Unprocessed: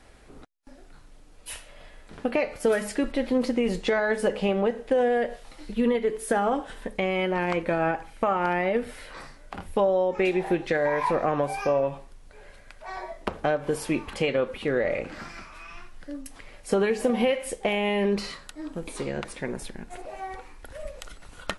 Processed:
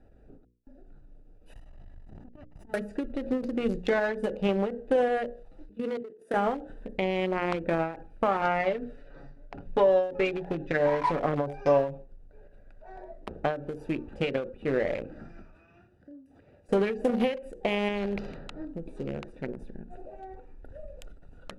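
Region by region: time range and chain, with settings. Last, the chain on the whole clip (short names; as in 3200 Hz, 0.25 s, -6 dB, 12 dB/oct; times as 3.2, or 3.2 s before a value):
1.53–2.74 minimum comb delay 1 ms + negative-ratio compressor -35 dBFS + core saturation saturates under 330 Hz
5.69–6.34 Bessel high-pass 290 Hz, order 8 + level quantiser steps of 13 dB
8.41–11.91 Chebyshev low-pass 5700 Hz + comb 7.1 ms, depth 59%
15.55–16.69 HPF 65 Hz 24 dB/oct + compressor 10:1, threshold -41 dBFS
17.88–18.65 tape spacing loss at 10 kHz 30 dB + de-hum 112.8 Hz, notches 13 + spectral compressor 2:1
whole clip: Wiener smoothing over 41 samples; notches 60/120/180/240/300/360/420/480/540 Hz; ending taper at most 120 dB/s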